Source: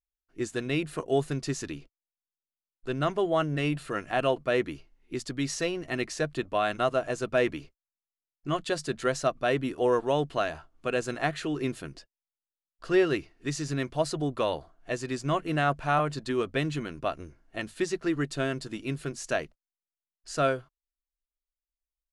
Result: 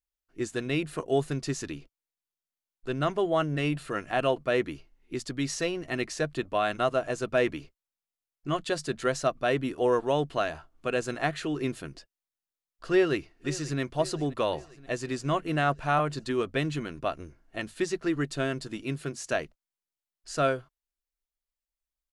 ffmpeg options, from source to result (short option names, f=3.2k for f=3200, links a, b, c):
-filter_complex "[0:a]asplit=2[a][b];[b]afade=t=in:st=12.91:d=0.01,afade=t=out:st=13.8:d=0.01,aecho=0:1:530|1060|1590|2120|2650|3180:0.133352|0.0800113|0.0480068|0.0288041|0.0172824|0.0103695[c];[a][c]amix=inputs=2:normalize=0,asettb=1/sr,asplit=3[d][e][f];[d]atrim=end=18.834[g];[e]atrim=start=18.83:end=19.32,asetpts=PTS-STARTPTS,afade=t=in:d=0.004:c=qsin,afade=t=out:st=0.486:d=0.004:c=qsin,highpass=61[h];[f]atrim=start=19.316[i];[g][h]acrossfade=d=0.004:c1=hsin:c2=qsin[j];[j][i]acrossfade=d=0.004:c1=qsin:c2=hsin"